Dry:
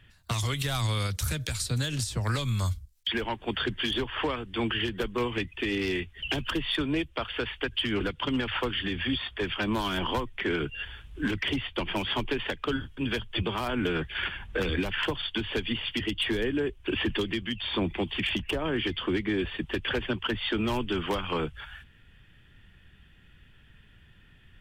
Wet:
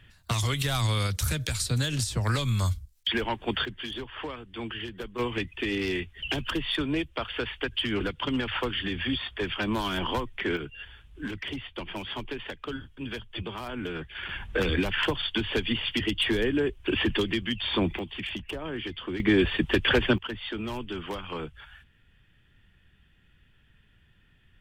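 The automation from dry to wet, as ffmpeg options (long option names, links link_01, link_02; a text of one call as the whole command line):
ffmpeg -i in.wav -af "asetnsamples=nb_out_samples=441:pad=0,asendcmd='3.65 volume volume -7dB;5.19 volume volume 0dB;10.57 volume volume -6dB;14.29 volume volume 2.5dB;17.99 volume volume -5.5dB;19.2 volume volume 7dB;20.18 volume volume -5.5dB',volume=2dB" out.wav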